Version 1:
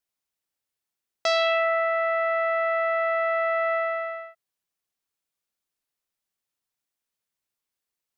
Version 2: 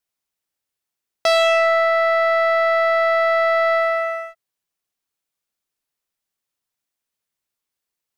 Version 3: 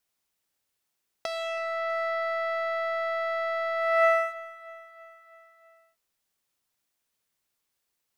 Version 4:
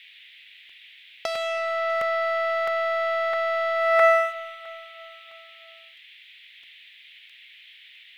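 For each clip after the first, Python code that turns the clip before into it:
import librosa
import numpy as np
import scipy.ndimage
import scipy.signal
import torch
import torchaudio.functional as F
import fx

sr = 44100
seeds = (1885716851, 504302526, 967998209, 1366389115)

y1 = fx.leveller(x, sr, passes=1)
y1 = y1 * librosa.db_to_amplitude(4.5)
y2 = fx.over_compress(y1, sr, threshold_db=-22.0, ratio=-0.5)
y2 = fx.echo_feedback(y2, sr, ms=324, feedback_pct=58, wet_db=-18.0)
y2 = y2 * librosa.db_to_amplitude(-3.5)
y3 = fx.dmg_noise_band(y2, sr, seeds[0], low_hz=1900.0, high_hz=3600.0, level_db=-54.0)
y3 = fx.buffer_crackle(y3, sr, first_s=0.69, period_s=0.66, block=128, kind='repeat')
y3 = y3 * librosa.db_to_amplitude(4.5)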